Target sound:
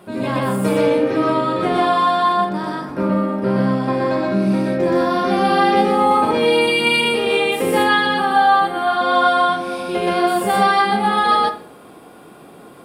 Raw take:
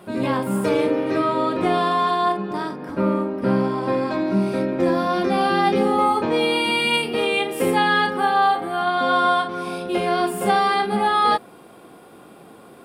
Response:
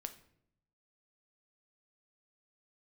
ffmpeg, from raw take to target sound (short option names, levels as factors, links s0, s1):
-filter_complex "[0:a]asplit=2[s0][s1];[1:a]atrim=start_sample=2205,adelay=123[s2];[s1][s2]afir=irnorm=-1:irlink=0,volume=1.58[s3];[s0][s3]amix=inputs=2:normalize=0"